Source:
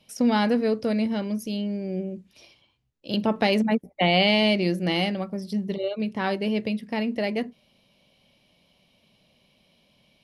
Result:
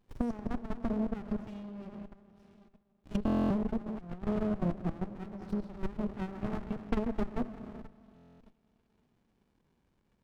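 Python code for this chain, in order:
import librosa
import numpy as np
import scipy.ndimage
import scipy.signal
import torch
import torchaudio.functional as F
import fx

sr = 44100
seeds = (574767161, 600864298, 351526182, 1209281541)

y = fx.comb_fb(x, sr, f0_hz=60.0, decay_s=0.46, harmonics='all', damping=0.0, mix_pct=100, at=(1.88, 3.14), fade=0.02)
y = fx.dereverb_blind(y, sr, rt60_s=1.4)
y = fx.env_lowpass_down(y, sr, base_hz=360.0, full_db=-23.0)
y = fx.rev_freeverb(y, sr, rt60_s=2.7, hf_ratio=0.5, predelay_ms=75, drr_db=7.5)
y = fx.level_steps(y, sr, step_db=14)
y = fx.peak_eq(y, sr, hz=1000.0, db=9.5, octaves=2.5)
y = fx.over_compress(y, sr, threshold_db=-34.0, ratio=-0.5, at=(3.86, 4.27))
y = fx.doubler(y, sr, ms=16.0, db=-5.0, at=(6.07, 6.77))
y = fx.buffer_glitch(y, sr, at_s=(3.25, 8.15), block=1024, repeats=10)
y = fx.running_max(y, sr, window=65)
y = y * 10.0 ** (-3.0 / 20.0)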